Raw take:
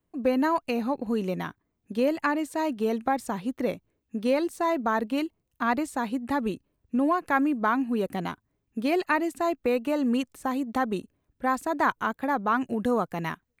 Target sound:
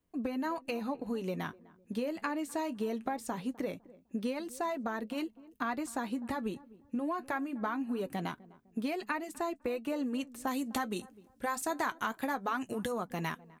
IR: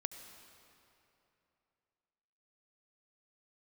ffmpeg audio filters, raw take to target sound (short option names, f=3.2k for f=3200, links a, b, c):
-filter_complex "[0:a]acompressor=threshold=-29dB:ratio=6,asplit=2[a][b];[b]adelay=253,lowpass=f=870:p=1,volume=-19.5dB,asplit=2[c][d];[d]adelay=253,lowpass=f=870:p=1,volume=0.36,asplit=2[e][f];[f]adelay=253,lowpass=f=870:p=1,volume=0.36[g];[a][c][e][g]amix=inputs=4:normalize=0,flanger=delay=4:depth=6.1:regen=-57:speed=0.22:shape=triangular,asetnsamples=n=441:p=0,asendcmd='10.47 equalizer g 13.5;12.92 equalizer g 7',equalizer=f=9.5k:t=o:w=2.9:g=3,volume=1.5dB"